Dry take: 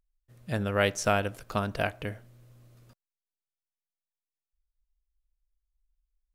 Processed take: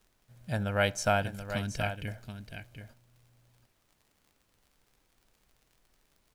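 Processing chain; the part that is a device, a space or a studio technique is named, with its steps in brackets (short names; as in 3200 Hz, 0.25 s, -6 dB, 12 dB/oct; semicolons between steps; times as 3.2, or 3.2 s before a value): comb 1.3 ms, depth 51%; 1.23–2.08 band shelf 850 Hz -12 dB; vinyl LP (crackle 55/s -48 dBFS; pink noise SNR 36 dB); echo 0.729 s -9.5 dB; gain -3 dB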